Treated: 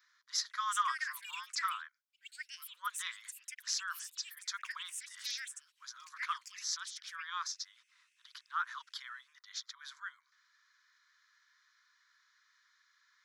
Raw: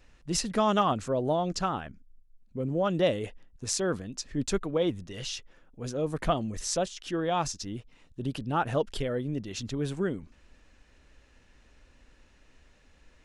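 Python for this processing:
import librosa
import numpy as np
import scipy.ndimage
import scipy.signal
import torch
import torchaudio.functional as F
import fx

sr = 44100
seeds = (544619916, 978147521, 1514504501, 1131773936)

y = scipy.signal.sosfilt(scipy.signal.cheby1(6, 1.0, 1000.0, 'highpass', fs=sr, output='sos'), x)
y = fx.fixed_phaser(y, sr, hz=2700.0, stages=6)
y = fx.echo_pitch(y, sr, ms=493, semitones=7, count=2, db_per_echo=-6.0)
y = y * librosa.db_to_amplitude(-1.0)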